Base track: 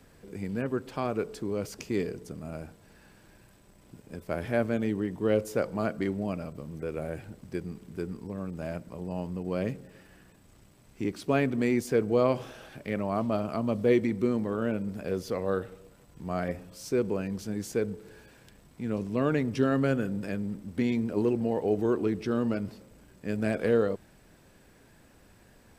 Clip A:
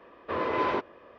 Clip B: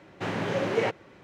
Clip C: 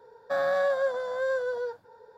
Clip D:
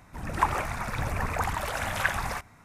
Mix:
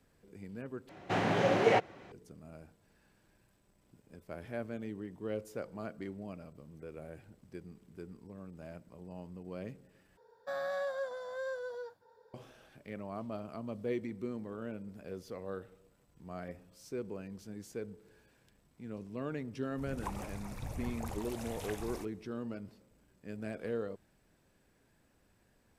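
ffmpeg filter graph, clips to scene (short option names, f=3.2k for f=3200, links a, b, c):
-filter_complex "[0:a]volume=-12.5dB[a];[2:a]equalizer=f=730:w=6.6:g=8.5[b];[3:a]highshelf=f=3.9k:g=6.5[c];[4:a]equalizer=f=1.5k:w=0.9:g=-13.5[d];[a]asplit=3[e][f][g];[e]atrim=end=0.894[h];[b]atrim=end=1.23,asetpts=PTS-STARTPTS,volume=-1dB[i];[f]atrim=start=2.116:end=10.174[j];[c]atrim=end=2.17,asetpts=PTS-STARTPTS,volume=-11dB[k];[g]atrim=start=12.336[l];[d]atrim=end=2.64,asetpts=PTS-STARTPTS,volume=-9.5dB,afade=t=in:d=0.004:c=hsin,afade=t=out:st=2.636:d=0.004:c=hsin,adelay=19640[m];[h][i]acrossfade=d=0.004:c1=hsin:c2=hsin[n];[n][j]acrossfade=d=0.004:c1=hsin:c2=hsin[o];[o][k]acrossfade=d=0.004:c1=hsin:c2=hsin[p];[p][l]acrossfade=d=0.004:c1=hsin:c2=hsin[q];[q][m]amix=inputs=2:normalize=0"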